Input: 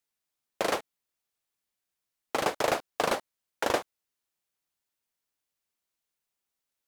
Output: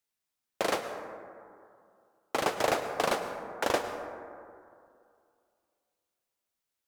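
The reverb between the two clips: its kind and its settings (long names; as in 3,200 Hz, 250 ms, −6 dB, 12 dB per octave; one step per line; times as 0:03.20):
dense smooth reverb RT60 2.4 s, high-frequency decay 0.3×, pre-delay 90 ms, DRR 7.5 dB
level −1 dB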